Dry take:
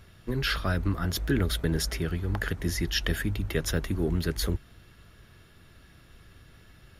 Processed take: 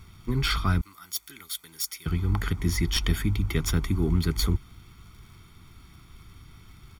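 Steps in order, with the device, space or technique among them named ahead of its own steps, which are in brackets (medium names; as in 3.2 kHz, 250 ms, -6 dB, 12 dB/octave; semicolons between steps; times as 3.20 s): record under a worn stylus (tracing distortion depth 0.039 ms; crackle 77 per s -48 dBFS; pink noise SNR 40 dB); 0.81–2.06 s: differentiator; comb 0.9 ms, depth 80%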